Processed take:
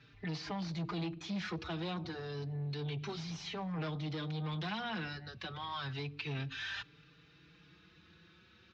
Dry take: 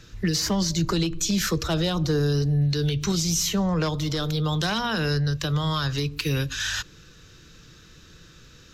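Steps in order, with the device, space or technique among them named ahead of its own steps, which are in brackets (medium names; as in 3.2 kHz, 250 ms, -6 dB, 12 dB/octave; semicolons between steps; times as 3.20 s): barber-pole flanger into a guitar amplifier (endless flanger 4.6 ms +0.3 Hz; saturation -26 dBFS, distortion -12 dB; cabinet simulation 110–4000 Hz, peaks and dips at 530 Hz -6 dB, 800 Hz +5 dB, 2.3 kHz +5 dB); trim -7 dB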